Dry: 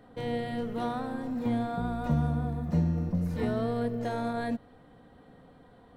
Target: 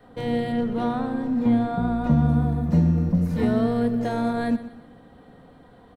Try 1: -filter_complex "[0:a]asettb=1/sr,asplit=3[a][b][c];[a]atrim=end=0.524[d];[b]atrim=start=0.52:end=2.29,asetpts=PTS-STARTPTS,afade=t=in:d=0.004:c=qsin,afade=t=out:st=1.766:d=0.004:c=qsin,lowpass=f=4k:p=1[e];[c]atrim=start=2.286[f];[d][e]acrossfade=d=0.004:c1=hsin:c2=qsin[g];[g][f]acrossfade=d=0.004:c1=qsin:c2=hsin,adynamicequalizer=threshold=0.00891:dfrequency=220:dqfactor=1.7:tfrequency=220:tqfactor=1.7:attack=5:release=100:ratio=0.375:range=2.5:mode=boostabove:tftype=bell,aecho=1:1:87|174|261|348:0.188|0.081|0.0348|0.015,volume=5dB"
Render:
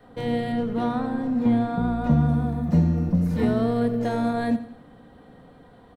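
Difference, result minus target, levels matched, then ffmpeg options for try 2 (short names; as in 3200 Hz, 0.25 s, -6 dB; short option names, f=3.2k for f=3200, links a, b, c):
echo 35 ms early
-filter_complex "[0:a]asettb=1/sr,asplit=3[a][b][c];[a]atrim=end=0.524[d];[b]atrim=start=0.52:end=2.29,asetpts=PTS-STARTPTS,afade=t=in:d=0.004:c=qsin,afade=t=out:st=1.766:d=0.004:c=qsin,lowpass=f=4k:p=1[e];[c]atrim=start=2.286[f];[d][e]acrossfade=d=0.004:c1=hsin:c2=qsin[g];[g][f]acrossfade=d=0.004:c1=qsin:c2=hsin,adynamicequalizer=threshold=0.00891:dfrequency=220:dqfactor=1.7:tfrequency=220:tqfactor=1.7:attack=5:release=100:ratio=0.375:range=2.5:mode=boostabove:tftype=bell,aecho=1:1:122|244|366|488:0.188|0.081|0.0348|0.015,volume=5dB"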